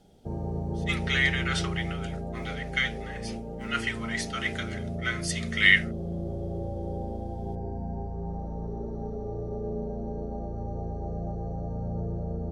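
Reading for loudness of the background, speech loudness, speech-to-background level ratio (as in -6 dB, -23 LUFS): -34.5 LUFS, -27.0 LUFS, 7.5 dB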